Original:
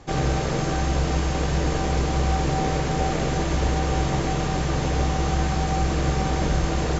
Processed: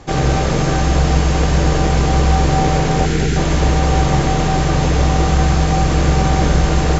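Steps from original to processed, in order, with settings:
time-frequency box erased 0:03.06–0:03.36, 480–1,300 Hz
echo with a time of its own for lows and highs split 330 Hz, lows 132 ms, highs 206 ms, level −9 dB
level +7 dB

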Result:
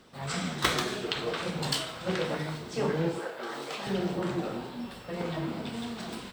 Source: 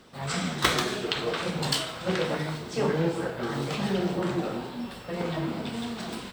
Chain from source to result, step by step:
0:03.19–0:03.87: high-pass filter 430 Hz 12 dB per octave
level −3 dB

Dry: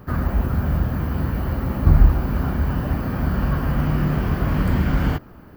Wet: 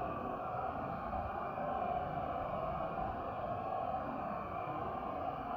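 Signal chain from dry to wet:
formant filter a
extreme stretch with random phases 8.2×, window 0.05 s, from 0:00.44
level +3.5 dB

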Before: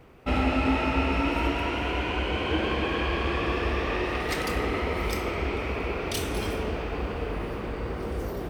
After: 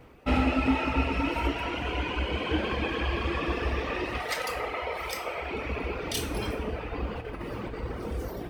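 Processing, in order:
reverb reduction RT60 1.7 s
0:04.18–0:05.51: low shelf with overshoot 400 Hz −12 dB, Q 1.5
0:07.09–0:07.83: compressor whose output falls as the input rises −36 dBFS, ratio −0.5
coupled-rooms reverb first 0.45 s, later 1.8 s, DRR 6 dB

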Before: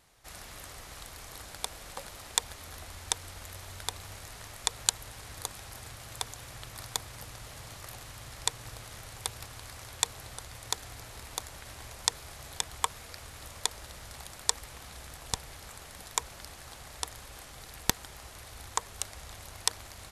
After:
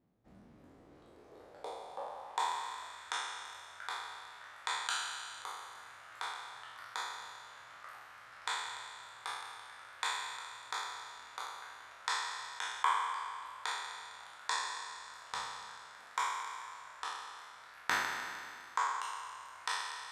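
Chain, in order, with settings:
peak hold with a decay on every bin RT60 2.40 s
reverb reduction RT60 0.6 s
band-pass filter sweep 220 Hz → 1,400 Hz, 0:00.47–0:03.06
level +1 dB

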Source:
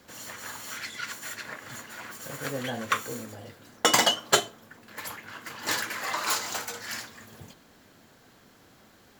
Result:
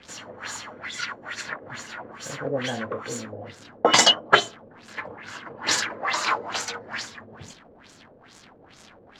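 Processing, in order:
surface crackle 270 per second −40 dBFS
auto-filter low-pass sine 2.3 Hz 490–7,600 Hz
level +3 dB

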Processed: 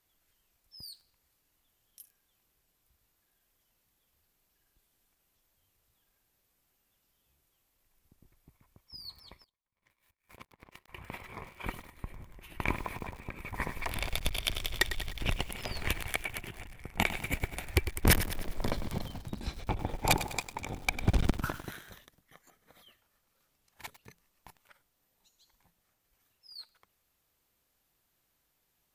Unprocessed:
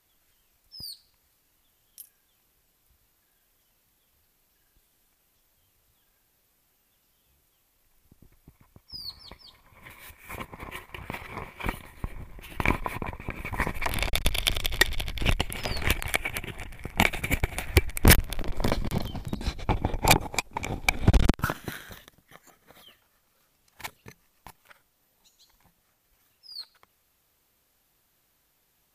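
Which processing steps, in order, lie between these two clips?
0:09.44–0:10.88: power curve on the samples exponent 2
feedback echo at a low word length 101 ms, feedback 55%, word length 6 bits, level −11 dB
level −7 dB

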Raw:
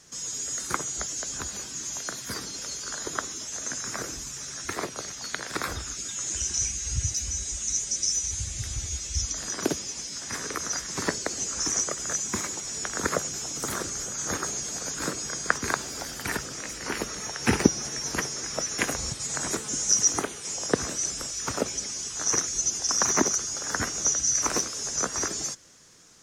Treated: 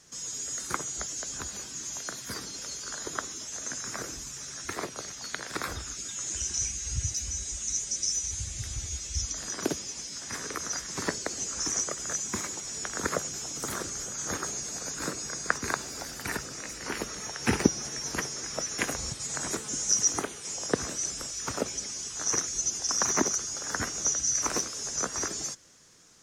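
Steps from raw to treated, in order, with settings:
0:14.52–0:16.79: notch filter 3,200 Hz, Q 14
level −3 dB

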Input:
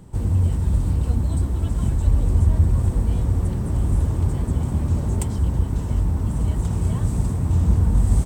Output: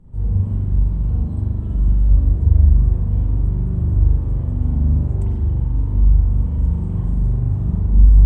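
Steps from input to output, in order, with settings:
spectral tilt −3 dB per octave
spring reverb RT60 1.1 s, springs 41 ms, chirp 35 ms, DRR −6.5 dB
level −15.5 dB

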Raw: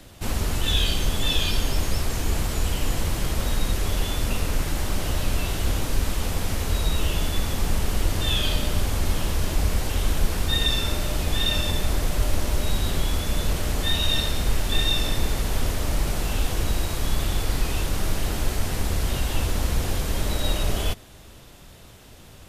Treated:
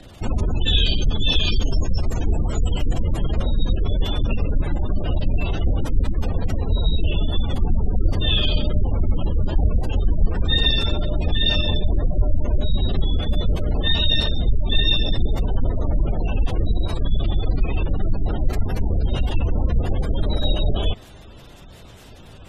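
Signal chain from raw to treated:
gate on every frequency bin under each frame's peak −25 dB strong
level +4.5 dB

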